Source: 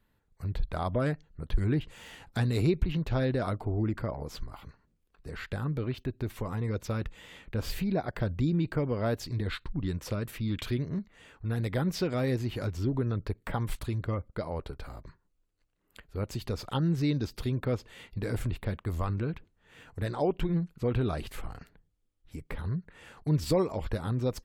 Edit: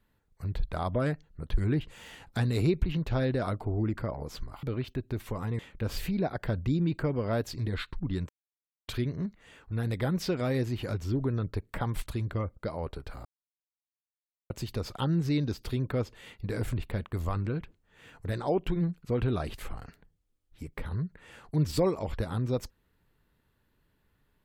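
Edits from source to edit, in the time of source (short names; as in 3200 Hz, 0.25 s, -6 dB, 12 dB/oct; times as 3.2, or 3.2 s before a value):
4.63–5.73 cut
6.69–7.32 cut
10.02–10.61 mute
14.98–16.23 mute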